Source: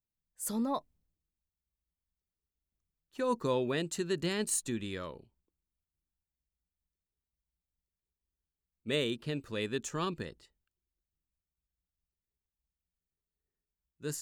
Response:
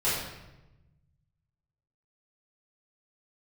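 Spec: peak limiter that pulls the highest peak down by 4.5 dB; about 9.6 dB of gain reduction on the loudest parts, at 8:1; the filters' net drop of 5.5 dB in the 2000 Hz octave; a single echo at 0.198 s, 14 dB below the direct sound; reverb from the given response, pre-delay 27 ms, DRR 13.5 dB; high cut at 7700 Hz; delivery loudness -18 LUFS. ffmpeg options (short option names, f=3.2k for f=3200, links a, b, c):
-filter_complex "[0:a]lowpass=7.7k,equalizer=f=2k:t=o:g=-7,acompressor=threshold=-37dB:ratio=8,alimiter=level_in=9.5dB:limit=-24dB:level=0:latency=1,volume=-9.5dB,aecho=1:1:198:0.2,asplit=2[a][b];[1:a]atrim=start_sample=2205,adelay=27[c];[b][c]afir=irnorm=-1:irlink=0,volume=-25dB[d];[a][d]amix=inputs=2:normalize=0,volume=26dB"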